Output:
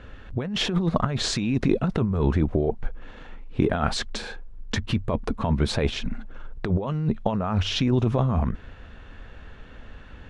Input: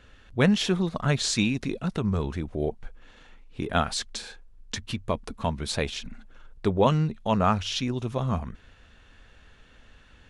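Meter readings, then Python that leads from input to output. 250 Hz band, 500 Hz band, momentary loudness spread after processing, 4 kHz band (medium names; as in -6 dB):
+2.5 dB, +1.0 dB, 13 LU, +1.5 dB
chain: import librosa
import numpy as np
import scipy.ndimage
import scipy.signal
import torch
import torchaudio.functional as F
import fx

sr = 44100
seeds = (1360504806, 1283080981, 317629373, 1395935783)

y = fx.lowpass(x, sr, hz=1300.0, slope=6)
y = fx.over_compress(y, sr, threshold_db=-30.0, ratio=-1.0)
y = F.gain(torch.from_numpy(y), 7.5).numpy()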